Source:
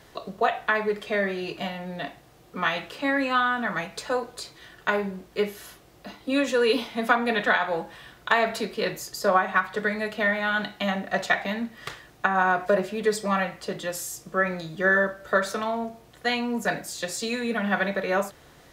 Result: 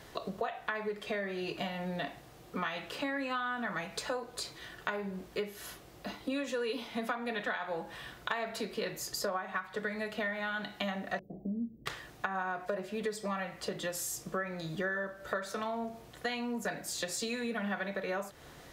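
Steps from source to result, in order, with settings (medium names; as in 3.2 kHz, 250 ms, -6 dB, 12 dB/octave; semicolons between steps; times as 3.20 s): 11.19–11.86 s: inverse Chebyshev band-stop 1.4–8.8 kHz, stop band 70 dB; compression 6:1, threshold -33 dBFS, peak gain reduction 16.5 dB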